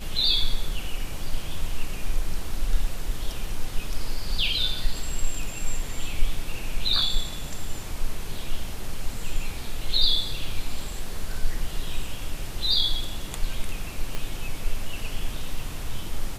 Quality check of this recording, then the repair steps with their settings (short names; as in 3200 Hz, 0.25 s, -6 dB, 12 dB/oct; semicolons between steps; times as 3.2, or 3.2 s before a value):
14.15 pop -16 dBFS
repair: de-click